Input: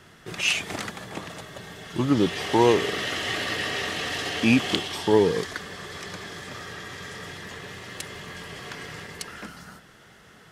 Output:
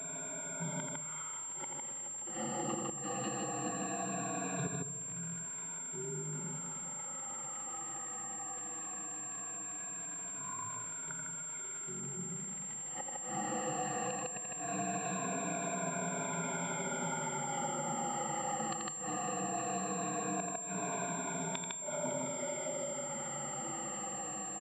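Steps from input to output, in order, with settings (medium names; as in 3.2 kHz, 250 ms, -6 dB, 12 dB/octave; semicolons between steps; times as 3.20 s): drifting ripple filter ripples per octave 1.6, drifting -0.44 Hz, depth 20 dB; Chebyshev high-pass 320 Hz, order 5; inverted gate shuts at -21 dBFS, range -34 dB; crackle 300 per s -49 dBFS; level rider gain up to 5.5 dB; speed mistake 78 rpm record played at 33 rpm; dynamic bell 1.8 kHz, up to -5 dB, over -46 dBFS, Q 1.3; loudspeakers at several distances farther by 29 m -7 dB, 53 m -4 dB; compression 2.5:1, threshold -40 dBFS, peak gain reduction 12 dB; reverberation RT60 0.95 s, pre-delay 20 ms, DRR 11 dB; class-D stage that switches slowly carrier 7.4 kHz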